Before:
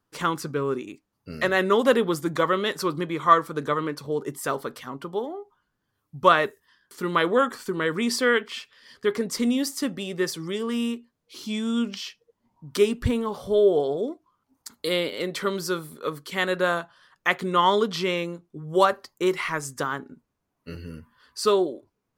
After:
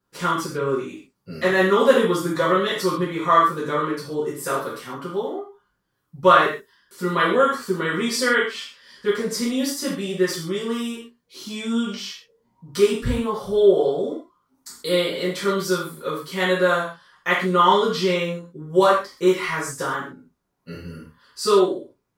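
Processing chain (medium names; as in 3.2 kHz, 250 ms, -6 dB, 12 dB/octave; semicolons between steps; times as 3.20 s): gated-style reverb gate 170 ms falling, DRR -8 dB; trim -5.5 dB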